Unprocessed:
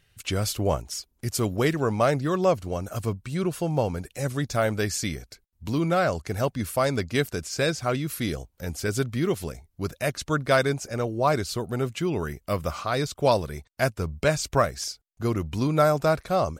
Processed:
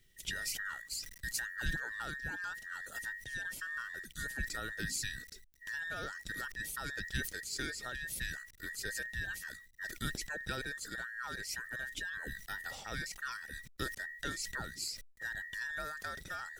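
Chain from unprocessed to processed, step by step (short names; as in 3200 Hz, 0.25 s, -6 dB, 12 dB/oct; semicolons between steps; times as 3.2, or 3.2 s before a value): band inversion scrambler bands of 2000 Hz; compressor 4:1, threshold -25 dBFS, peak gain reduction 9 dB; bit-crush 11-bit; passive tone stack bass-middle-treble 10-0-1; sustainer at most 85 dB/s; gain +14.5 dB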